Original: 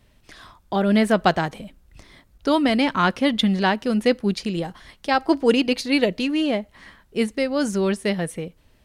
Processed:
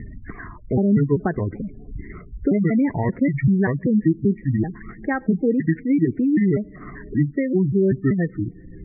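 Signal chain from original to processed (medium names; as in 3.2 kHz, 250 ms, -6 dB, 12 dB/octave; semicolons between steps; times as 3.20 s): pitch shift switched off and on -7.5 st, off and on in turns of 193 ms; compression 4:1, threshold -21 dBFS, peak gain reduction 9 dB; on a send at -23.5 dB: reverberation RT60 2.3 s, pre-delay 28 ms; on the sum: upward compressor, threshold -28 dBFS; high-order bell 860 Hz -9.5 dB; spectral gate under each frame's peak -20 dB strong; steep low-pass 2 kHz 96 dB/octave; trim +7.5 dB; MP3 40 kbps 24 kHz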